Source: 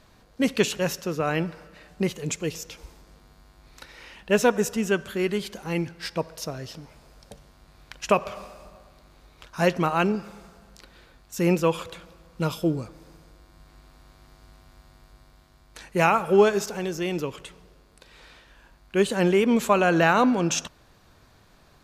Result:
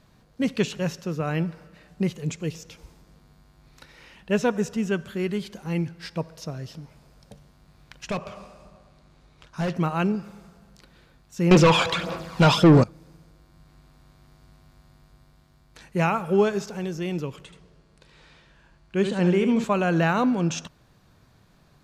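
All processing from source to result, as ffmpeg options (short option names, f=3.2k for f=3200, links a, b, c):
-filter_complex "[0:a]asettb=1/sr,asplit=3[a][b][c];[a]atrim=end=8.074[d];[b]atrim=start=8.07:end=9.74,asetpts=PTS-STARTPTS,afade=t=in:d=0.004:c=qsin,afade=t=out:st=1.666:d=0.004:c=qsin,lowpass=9.6k,asoftclip=type=hard:threshold=-21dB[e];[c]atrim=start=9.736[f];[d][e]acrossfade=d=0.004:c1=hsin:c2=qsin[g];[g][f]acrossfade=d=0.004:c1=qsin:c2=hsin,asettb=1/sr,asplit=3[h][i][j];[h]atrim=end=11.514[k];[i]atrim=start=11.51:end=12.84,asetpts=PTS-STARTPTS,afade=t=in:d=0.004:c=qsin,afade=t=out:st=1.326:d=0.004:c=qsin,equalizer=f=680:w=4.6:g=3.5,aphaser=in_gain=1:out_gain=1:delay=1.3:decay=0.52:speed=1.6:type=sinusoidal,asplit=2[l][m];[m]highpass=f=720:p=1,volume=29dB,asoftclip=type=tanh:threshold=-4dB[n];[l][n]amix=inputs=2:normalize=0,lowpass=f=5k:p=1,volume=-6dB[o];[j]atrim=start=12.836[p];[k][o]acrossfade=d=0.004:c1=hsin:c2=qsin[q];[q][p]acrossfade=d=0.004:c1=qsin:c2=hsin,asettb=1/sr,asplit=3[r][s][t];[r]atrim=end=17.454[u];[s]atrim=start=17.45:end=19.64,asetpts=PTS-STARTPTS,afade=t=in:d=0.004:c=qsin,afade=t=out:st=2.186:d=0.004:c=qsin,lowpass=8.4k,aecho=1:1:74:0.422,atrim=end_sample=96579[v];[t]atrim=start=19.636[w];[u][v]acrossfade=d=0.004:c1=hsin:c2=qsin[x];[x][w]acrossfade=d=0.004:c1=qsin:c2=hsin,acrossover=split=7300[y][z];[z]acompressor=threshold=-50dB:ratio=4:attack=1:release=60[aa];[y][aa]amix=inputs=2:normalize=0,equalizer=f=150:t=o:w=1.3:g=8.5,volume=-4.5dB"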